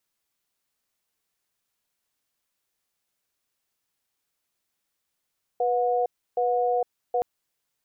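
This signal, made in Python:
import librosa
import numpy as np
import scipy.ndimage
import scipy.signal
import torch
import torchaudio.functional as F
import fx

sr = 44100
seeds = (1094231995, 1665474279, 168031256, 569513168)

y = fx.cadence(sr, length_s=1.62, low_hz=491.0, high_hz=725.0, on_s=0.46, off_s=0.31, level_db=-23.5)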